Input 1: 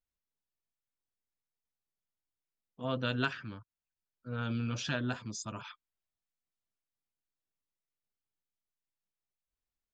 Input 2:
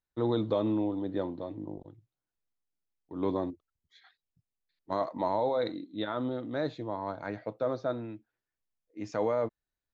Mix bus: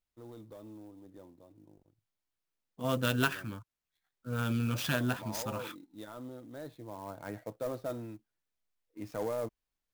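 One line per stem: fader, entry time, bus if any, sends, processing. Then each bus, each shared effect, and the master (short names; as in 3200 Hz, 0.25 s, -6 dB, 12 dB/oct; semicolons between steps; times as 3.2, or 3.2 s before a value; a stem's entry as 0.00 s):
+3.0 dB, 0.00 s, no send, dry
5.06 s -24 dB -> 5.34 s -16 dB -> 6.66 s -16 dB -> 7.3 s -8.5 dB, 0.00 s, no send, sample leveller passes 1; low shelf 84 Hz +9 dB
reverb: off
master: clock jitter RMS 0.027 ms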